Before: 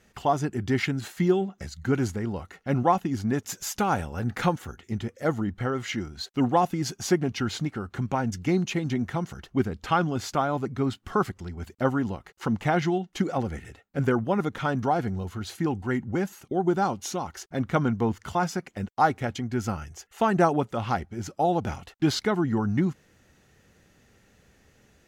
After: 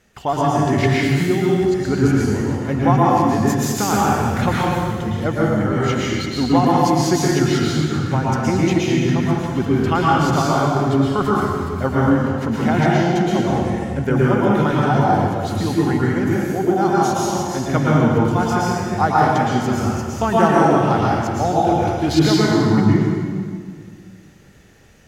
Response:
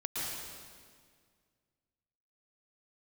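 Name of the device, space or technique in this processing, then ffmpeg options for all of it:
stairwell: -filter_complex "[1:a]atrim=start_sample=2205[s0];[0:a][s0]afir=irnorm=-1:irlink=0,asettb=1/sr,asplit=3[s1][s2][s3];[s1]atrim=end=12.464[s4];[s2]atrim=start=12.46:end=14.15,asetpts=PTS-STARTPTS,afade=t=in:d=0.004:c=qsin,afade=t=out:st=1.686:d=0.004:c=qsin,bandreject=f=1200:w=10[s5];[s3]atrim=start=14.146[s6];[s4][s5]acrossfade=d=0.004:c1=hsin:c2=qsin[s7];[s7][s6]acrossfade=d=0.004:c1=qsin:c2=hsin,volume=1.78"

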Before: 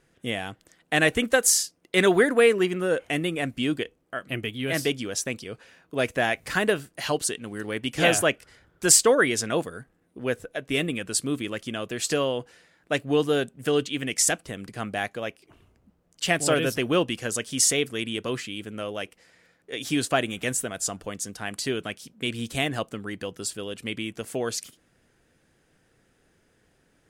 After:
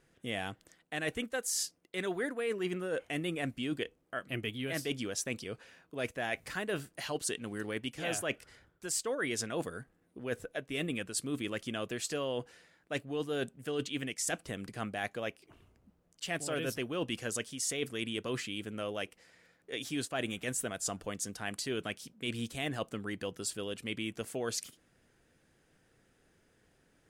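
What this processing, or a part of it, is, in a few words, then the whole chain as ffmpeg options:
compression on the reversed sound: -af "areverse,acompressor=threshold=0.0447:ratio=16,areverse,volume=0.631"

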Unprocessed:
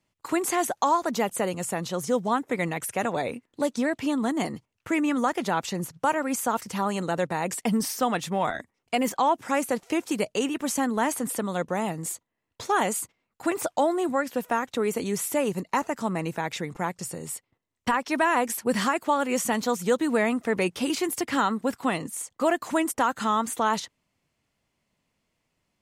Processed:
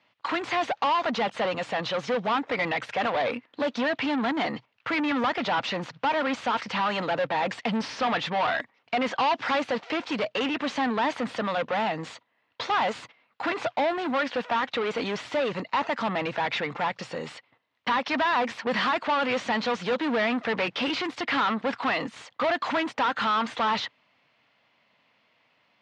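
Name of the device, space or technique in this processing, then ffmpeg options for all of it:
overdrive pedal into a guitar cabinet: -filter_complex "[0:a]asplit=2[s0][s1];[s1]highpass=f=720:p=1,volume=22.4,asoftclip=type=tanh:threshold=0.266[s2];[s0][s2]amix=inputs=2:normalize=0,lowpass=f=5700:p=1,volume=0.501,highpass=110,equalizer=f=120:t=q:w=4:g=4,equalizer=f=170:t=q:w=4:g=-4,equalizer=f=370:t=q:w=4:g=-8,lowpass=f=4100:w=0.5412,lowpass=f=4100:w=1.3066,asettb=1/sr,asplit=3[s3][s4][s5];[s3]atrim=end=9.194[s6];[s4]atrim=start=9.19:end=9.59,asetpts=PTS-STARTPTS,afade=t=in:d=0.004:c=qsin,afade=t=out:st=0.396:d=0.004:c=qsin,equalizer=f=4900:w=0.91:g=4.5[s7];[s5]atrim=start=9.586[s8];[s6][s7]acrossfade=d=0.004:c1=hsin:c2=qsin[s9];[s9][s8]acrossfade=d=0.004:c1=qsin:c2=hsin,volume=0.501"

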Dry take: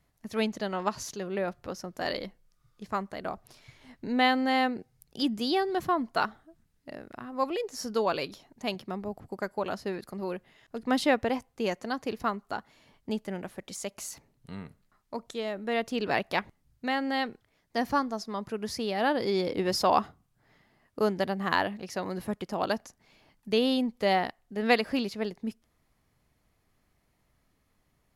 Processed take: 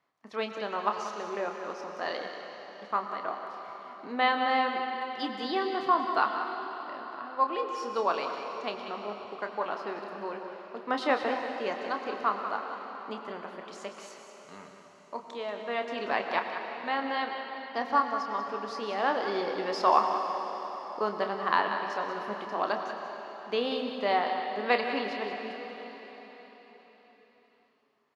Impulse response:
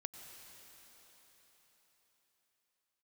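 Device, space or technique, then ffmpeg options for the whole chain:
station announcement: -filter_complex "[0:a]highpass=330,lowpass=4100,equalizer=f=1100:t=o:w=0.58:g=8,aecho=1:1:29.15|186.6:0.355|0.316[s0];[1:a]atrim=start_sample=2205[s1];[s0][s1]afir=irnorm=-1:irlink=0,volume=1.12"

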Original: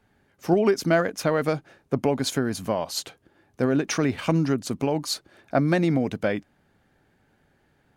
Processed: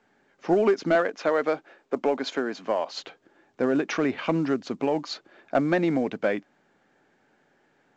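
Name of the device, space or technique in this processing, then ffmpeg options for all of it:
telephone: -filter_complex "[0:a]asettb=1/sr,asplit=3[s0][s1][s2];[s0]atrim=end=0.954[s3];[s1]atrim=start=0.95:end=2.91,asetpts=PTS-STARTPTS,afade=t=in:d=0.004:c=qsin,afade=t=out:st=1.956:d=0.004:c=qsin,highpass=270[s4];[s2]atrim=start=2.906[s5];[s3][s4]acrossfade=d=0.004:c1=hsin:c2=qsin[s6];[s6][s5]acrossfade=d=0.004:c1=qsin:c2=hsin,highpass=260,lowpass=3100,asoftclip=type=tanh:threshold=0.237,volume=1.19" -ar 16000 -c:a pcm_mulaw

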